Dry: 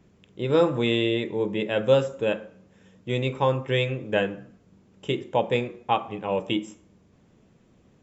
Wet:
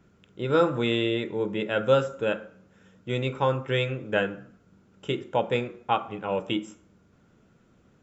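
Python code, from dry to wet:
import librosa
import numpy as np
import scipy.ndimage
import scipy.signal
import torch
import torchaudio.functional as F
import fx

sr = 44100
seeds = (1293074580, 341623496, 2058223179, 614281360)

y = fx.peak_eq(x, sr, hz=1400.0, db=13.5, octaves=0.21)
y = y * 10.0 ** (-2.0 / 20.0)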